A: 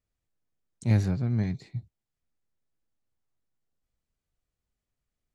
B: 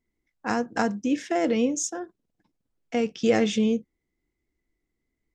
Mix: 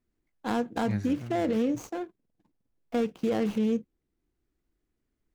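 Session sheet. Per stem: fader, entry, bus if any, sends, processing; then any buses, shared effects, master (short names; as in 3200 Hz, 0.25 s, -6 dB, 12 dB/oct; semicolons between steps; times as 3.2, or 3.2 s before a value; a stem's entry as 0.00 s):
-3.5 dB, 0.00 s, no send, bell 1600 Hz +7.5 dB 0.89 oct; auto duck -9 dB, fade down 1.35 s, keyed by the second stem
+0.5 dB, 0.00 s, no send, median filter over 25 samples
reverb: off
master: limiter -20 dBFS, peak gain reduction 9.5 dB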